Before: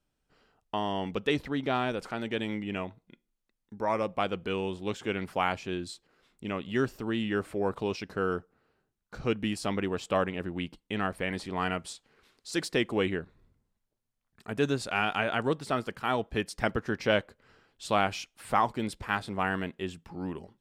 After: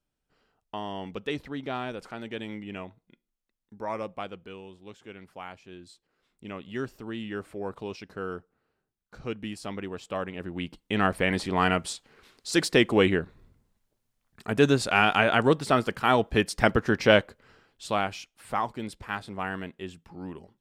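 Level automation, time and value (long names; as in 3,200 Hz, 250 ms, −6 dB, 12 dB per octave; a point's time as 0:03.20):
0:04.04 −4 dB
0:04.64 −13 dB
0:05.64 −13 dB
0:06.44 −5 dB
0:10.18 −5 dB
0:11.06 +7 dB
0:17.11 +7 dB
0:18.20 −3 dB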